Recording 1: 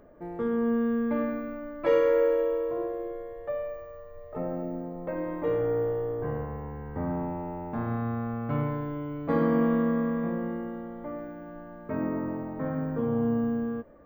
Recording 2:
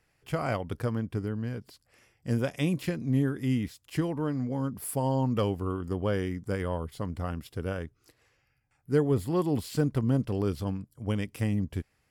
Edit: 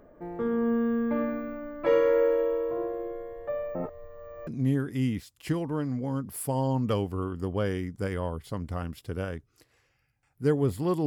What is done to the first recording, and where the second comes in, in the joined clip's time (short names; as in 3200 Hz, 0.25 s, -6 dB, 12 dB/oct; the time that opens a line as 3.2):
recording 1
3.75–4.47 reverse
4.47 switch to recording 2 from 2.95 s